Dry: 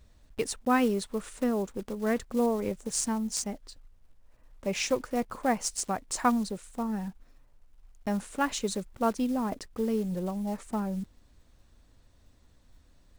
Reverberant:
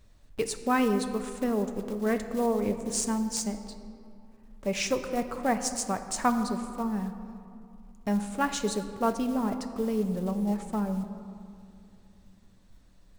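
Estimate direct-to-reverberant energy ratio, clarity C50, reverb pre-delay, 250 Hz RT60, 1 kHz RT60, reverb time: 7.0 dB, 9.5 dB, 4 ms, 3.4 s, 2.5 s, 2.6 s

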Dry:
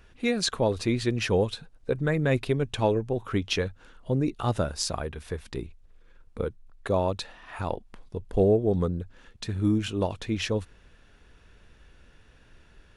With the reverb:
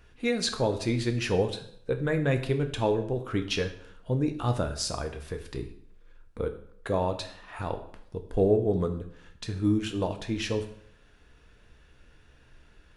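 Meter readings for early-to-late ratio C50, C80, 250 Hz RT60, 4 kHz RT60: 11.5 dB, 14.5 dB, 0.65 s, 0.55 s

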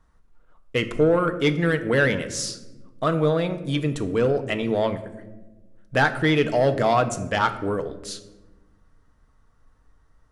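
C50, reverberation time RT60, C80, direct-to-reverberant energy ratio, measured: 13.0 dB, 1.2 s, 15.0 dB, 8.0 dB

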